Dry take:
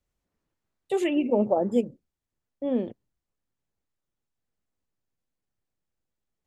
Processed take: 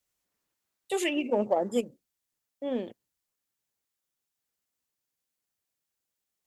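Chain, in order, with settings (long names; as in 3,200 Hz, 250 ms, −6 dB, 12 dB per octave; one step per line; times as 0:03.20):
spectral tilt +3 dB per octave
harmonic generator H 7 −36 dB, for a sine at −13 dBFS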